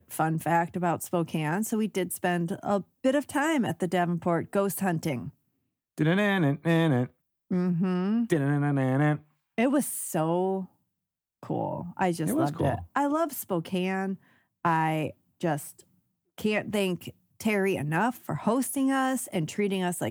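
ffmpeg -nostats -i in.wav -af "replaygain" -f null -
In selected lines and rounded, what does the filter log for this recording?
track_gain = +8.9 dB
track_peak = 0.180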